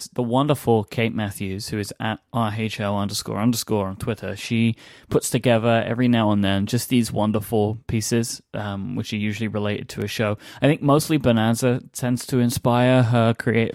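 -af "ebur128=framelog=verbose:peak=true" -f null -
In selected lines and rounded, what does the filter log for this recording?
Integrated loudness:
  I:         -21.9 LUFS
  Threshold: -31.9 LUFS
Loudness range:
  LRA:         4.8 LU
  Threshold: -42.3 LUFS
  LRA low:   -24.7 LUFS
  LRA high:  -19.9 LUFS
True peak:
  Peak:       -5.5 dBFS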